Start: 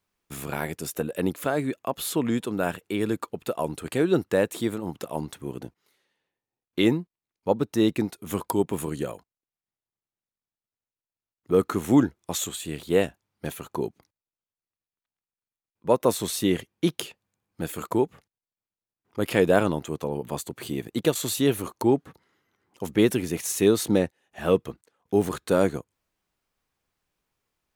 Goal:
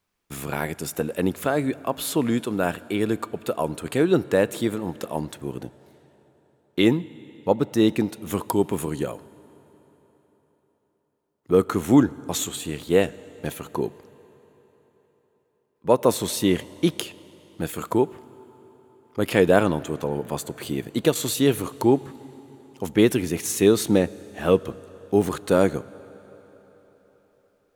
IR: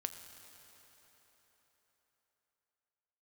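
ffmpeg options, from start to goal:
-filter_complex "[0:a]asplit=2[a][b];[1:a]atrim=start_sample=2205,highshelf=f=11k:g=-9.5[c];[b][c]afir=irnorm=-1:irlink=0,volume=-7dB[d];[a][d]amix=inputs=2:normalize=0"

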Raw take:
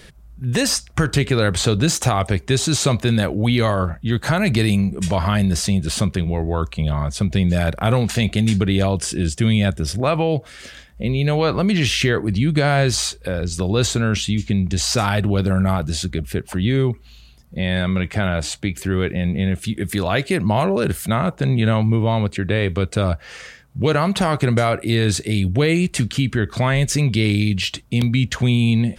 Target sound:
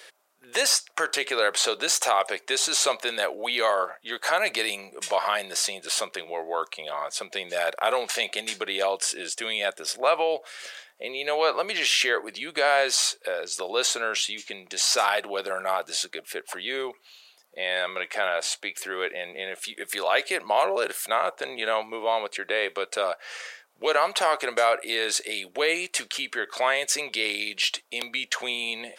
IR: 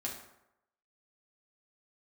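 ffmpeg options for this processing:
-af "highpass=f=500:w=0.5412,highpass=f=500:w=1.3066,volume=-1dB"

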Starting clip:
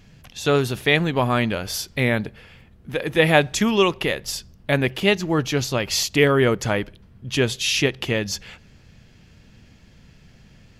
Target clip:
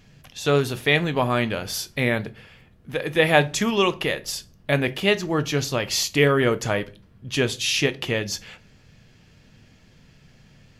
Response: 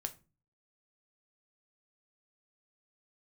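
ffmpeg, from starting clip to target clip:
-filter_complex "[0:a]asplit=2[a][b];[1:a]atrim=start_sample=2205,lowshelf=f=110:g=-8[c];[b][c]afir=irnorm=-1:irlink=0,volume=6.5dB[d];[a][d]amix=inputs=2:normalize=0,volume=-10dB"

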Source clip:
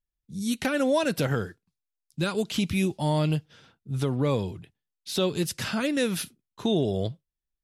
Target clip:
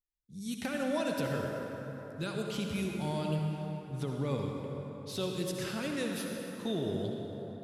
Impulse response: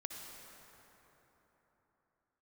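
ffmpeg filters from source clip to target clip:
-filter_complex "[1:a]atrim=start_sample=2205[a];[0:a][a]afir=irnorm=-1:irlink=0,volume=-6dB"

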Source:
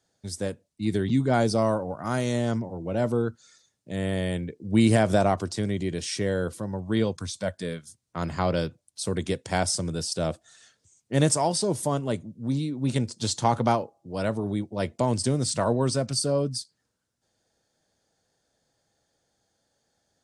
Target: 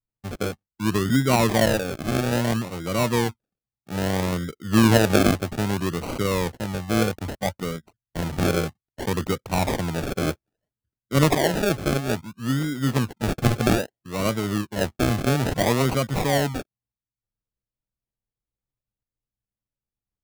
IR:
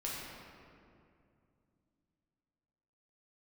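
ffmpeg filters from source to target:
-af "anlmdn=0.251,acrusher=samples=36:mix=1:aa=0.000001:lfo=1:lforange=21.6:lforate=0.61,volume=3dB"

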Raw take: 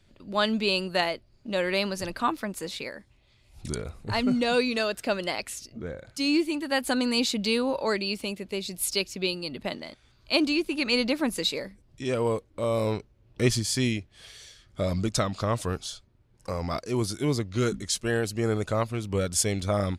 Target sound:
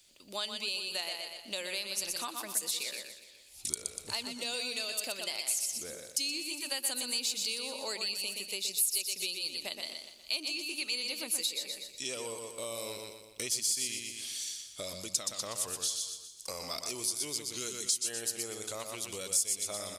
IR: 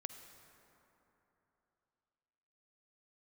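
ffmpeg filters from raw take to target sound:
-filter_complex "[0:a]asplit=2[a][b];[b]aecho=0:1:121|242|363|484:0.473|0.161|0.0547|0.0186[c];[a][c]amix=inputs=2:normalize=0,aexciter=amount=3.1:drive=5.7:freq=2.3k,acompressor=threshold=-28dB:ratio=6,bass=f=250:g=-13,treble=f=4k:g=8,asplit=2[d][e];[e]aecho=0:1:409:0.106[f];[d][f]amix=inputs=2:normalize=0,volume=-7.5dB"

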